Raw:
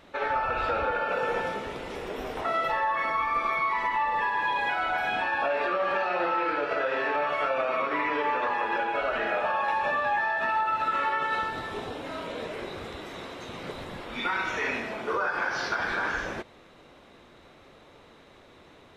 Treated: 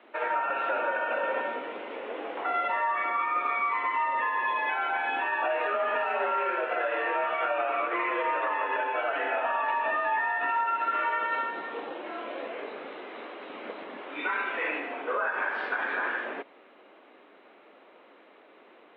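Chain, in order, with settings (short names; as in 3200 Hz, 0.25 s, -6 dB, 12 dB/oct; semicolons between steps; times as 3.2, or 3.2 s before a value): mistuned SSB +54 Hz 190–3100 Hz; gain -1 dB; Opus 192 kbps 48000 Hz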